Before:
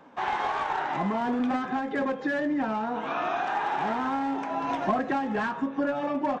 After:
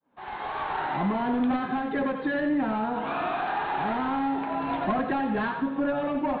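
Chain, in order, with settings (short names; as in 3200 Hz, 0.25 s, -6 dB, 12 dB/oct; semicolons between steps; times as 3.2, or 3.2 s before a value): opening faded in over 0.83 s; soft clip -20 dBFS, distortion -21 dB; steep low-pass 4300 Hz 96 dB/oct; low shelf 160 Hz +9 dB; thinning echo 89 ms, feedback 40%, level -7 dB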